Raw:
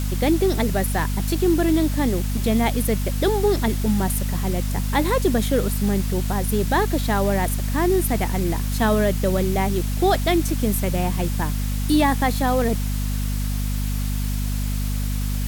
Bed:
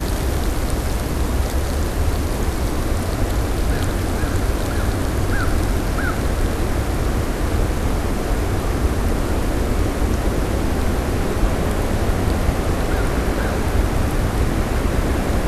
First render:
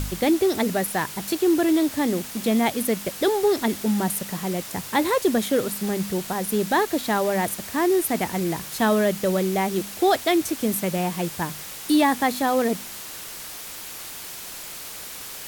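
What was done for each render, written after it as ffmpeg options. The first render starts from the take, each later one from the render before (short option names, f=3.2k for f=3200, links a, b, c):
-af "bandreject=f=50:t=h:w=4,bandreject=f=100:t=h:w=4,bandreject=f=150:t=h:w=4,bandreject=f=200:t=h:w=4,bandreject=f=250:t=h:w=4"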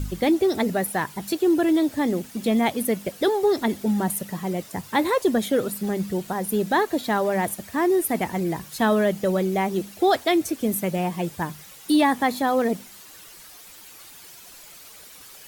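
-af "afftdn=nr=11:nf=-37"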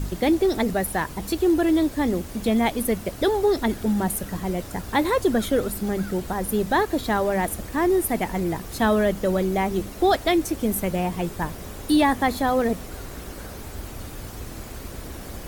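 -filter_complex "[1:a]volume=-17.5dB[a];[0:a][a]amix=inputs=2:normalize=0"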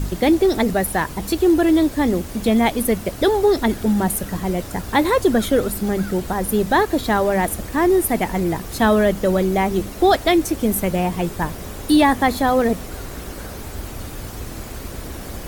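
-af "volume=4.5dB"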